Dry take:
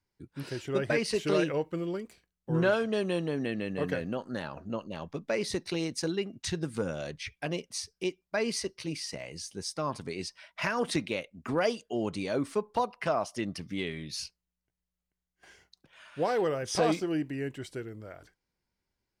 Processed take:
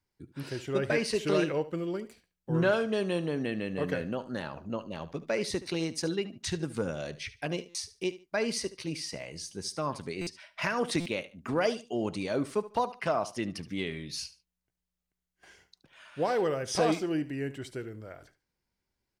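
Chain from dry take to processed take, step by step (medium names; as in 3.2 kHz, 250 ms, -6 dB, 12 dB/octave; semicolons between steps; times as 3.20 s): on a send: feedback delay 73 ms, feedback 24%, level -16 dB; on the sum: buffer glitch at 7.69/10.21/11.00 s, samples 256, times 9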